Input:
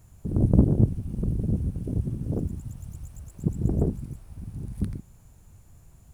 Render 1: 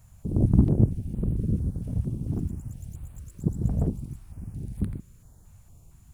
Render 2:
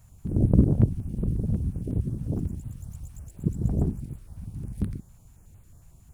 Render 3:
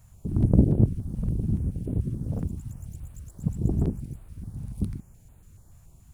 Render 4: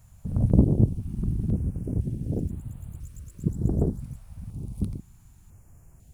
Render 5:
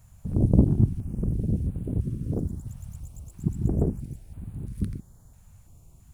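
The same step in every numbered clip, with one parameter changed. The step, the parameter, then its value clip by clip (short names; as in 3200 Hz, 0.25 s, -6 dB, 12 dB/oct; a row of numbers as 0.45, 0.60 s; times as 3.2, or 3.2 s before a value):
stepped notch, rate: 4.4, 11, 7, 2, 3 Hz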